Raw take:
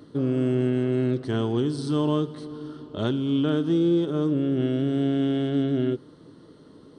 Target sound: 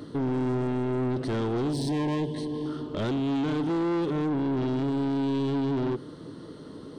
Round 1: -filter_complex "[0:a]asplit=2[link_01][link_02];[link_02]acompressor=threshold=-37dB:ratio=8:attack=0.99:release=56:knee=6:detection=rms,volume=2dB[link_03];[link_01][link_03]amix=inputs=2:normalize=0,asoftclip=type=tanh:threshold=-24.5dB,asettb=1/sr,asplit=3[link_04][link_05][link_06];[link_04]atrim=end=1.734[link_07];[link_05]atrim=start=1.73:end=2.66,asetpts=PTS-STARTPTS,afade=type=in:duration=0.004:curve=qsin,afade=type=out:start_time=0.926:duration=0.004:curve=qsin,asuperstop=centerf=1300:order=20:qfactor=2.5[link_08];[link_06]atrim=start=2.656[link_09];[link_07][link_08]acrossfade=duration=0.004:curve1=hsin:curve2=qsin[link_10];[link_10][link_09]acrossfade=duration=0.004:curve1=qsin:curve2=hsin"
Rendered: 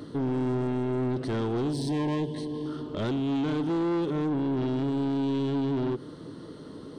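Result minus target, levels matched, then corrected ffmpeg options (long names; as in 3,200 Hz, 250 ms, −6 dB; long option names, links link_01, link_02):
downward compressor: peak gain reduction +8 dB
-filter_complex "[0:a]asplit=2[link_01][link_02];[link_02]acompressor=threshold=-28dB:ratio=8:attack=0.99:release=56:knee=6:detection=rms,volume=2dB[link_03];[link_01][link_03]amix=inputs=2:normalize=0,asoftclip=type=tanh:threshold=-24.5dB,asettb=1/sr,asplit=3[link_04][link_05][link_06];[link_04]atrim=end=1.734[link_07];[link_05]atrim=start=1.73:end=2.66,asetpts=PTS-STARTPTS,afade=type=in:duration=0.004:curve=qsin,afade=type=out:start_time=0.926:duration=0.004:curve=qsin,asuperstop=centerf=1300:order=20:qfactor=2.5[link_08];[link_06]atrim=start=2.656[link_09];[link_07][link_08]acrossfade=duration=0.004:curve1=hsin:curve2=qsin[link_10];[link_10][link_09]acrossfade=duration=0.004:curve1=qsin:curve2=hsin"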